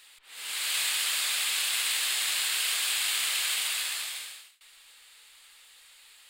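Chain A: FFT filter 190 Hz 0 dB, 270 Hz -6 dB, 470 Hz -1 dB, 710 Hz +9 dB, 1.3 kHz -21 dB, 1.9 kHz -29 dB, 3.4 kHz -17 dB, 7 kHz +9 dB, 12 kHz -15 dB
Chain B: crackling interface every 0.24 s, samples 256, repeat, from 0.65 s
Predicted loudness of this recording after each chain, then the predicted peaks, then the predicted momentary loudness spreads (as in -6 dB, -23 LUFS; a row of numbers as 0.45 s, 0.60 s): -28.5 LUFS, -26.5 LUFS; -17.5 dBFS, -14.5 dBFS; 9 LU, 9 LU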